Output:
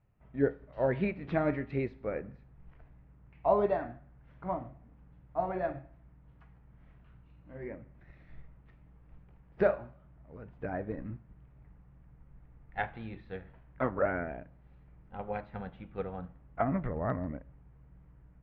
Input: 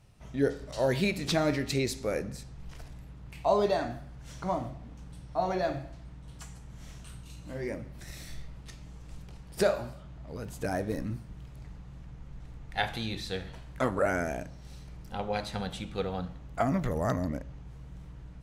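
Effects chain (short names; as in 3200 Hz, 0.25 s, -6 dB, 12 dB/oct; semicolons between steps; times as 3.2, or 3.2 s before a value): LPF 2200 Hz 24 dB/oct; upward expander 1.5:1, over -44 dBFS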